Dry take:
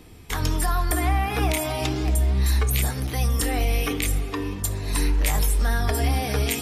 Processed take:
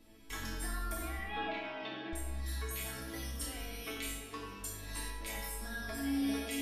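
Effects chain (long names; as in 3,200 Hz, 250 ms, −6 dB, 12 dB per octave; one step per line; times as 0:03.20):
0:01.19–0:02.13: elliptic band-pass filter 160–3,500 Hz
downward compressor 2.5 to 1, threshold −23 dBFS, peak gain reduction 4.5 dB
resonators tuned to a chord A3 major, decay 0.65 s
on a send: delay with a low-pass on its return 90 ms, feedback 55%, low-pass 2,400 Hz, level −6 dB
on the sum: level +11 dB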